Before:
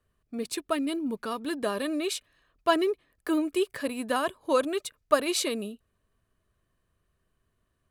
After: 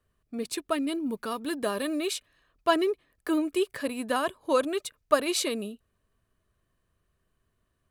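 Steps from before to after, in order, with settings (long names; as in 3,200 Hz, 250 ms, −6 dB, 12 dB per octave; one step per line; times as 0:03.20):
0:01.03–0:02.11: high-shelf EQ 11,000 Hz +7.5 dB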